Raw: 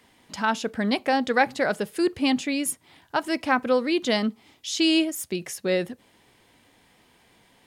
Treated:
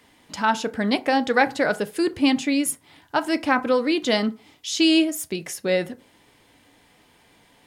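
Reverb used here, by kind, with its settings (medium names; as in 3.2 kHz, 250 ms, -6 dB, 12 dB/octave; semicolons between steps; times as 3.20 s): FDN reverb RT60 0.36 s, low-frequency decay 0.8×, high-frequency decay 0.5×, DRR 10.5 dB; trim +2 dB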